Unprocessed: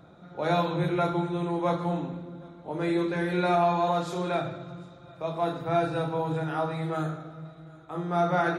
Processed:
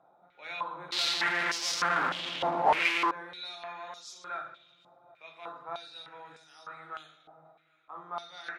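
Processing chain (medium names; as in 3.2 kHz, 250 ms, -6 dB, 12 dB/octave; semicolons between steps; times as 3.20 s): treble shelf 4.2 kHz +8 dB; 0.92–3.11 s: fuzz box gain 50 dB, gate -53 dBFS; step-sequenced band-pass 3.3 Hz 820–5400 Hz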